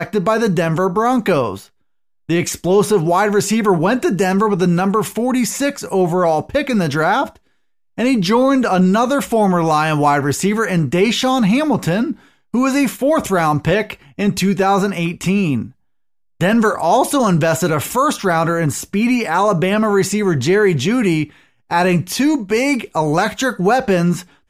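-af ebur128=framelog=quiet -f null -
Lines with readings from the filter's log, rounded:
Integrated loudness:
  I:         -16.1 LUFS
  Threshold: -26.3 LUFS
Loudness range:
  LRA:         2.0 LU
  Threshold: -36.4 LUFS
  LRA low:   -17.3 LUFS
  LRA high:  -15.3 LUFS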